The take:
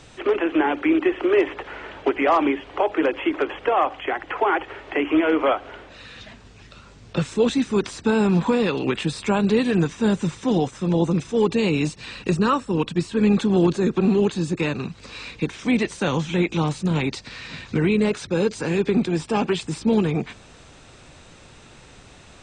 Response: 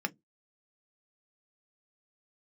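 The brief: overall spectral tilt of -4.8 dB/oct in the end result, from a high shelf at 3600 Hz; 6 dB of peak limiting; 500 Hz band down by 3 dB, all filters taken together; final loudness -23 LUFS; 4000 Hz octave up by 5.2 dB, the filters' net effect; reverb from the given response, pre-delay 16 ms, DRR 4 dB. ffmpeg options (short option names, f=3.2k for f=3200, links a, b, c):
-filter_complex "[0:a]equalizer=f=500:t=o:g=-4,highshelf=f=3.6k:g=5,equalizer=f=4k:t=o:g=3.5,alimiter=limit=-14dB:level=0:latency=1,asplit=2[a][b];[1:a]atrim=start_sample=2205,adelay=16[c];[b][c]afir=irnorm=-1:irlink=0,volume=-8.5dB[d];[a][d]amix=inputs=2:normalize=0,volume=-0.5dB"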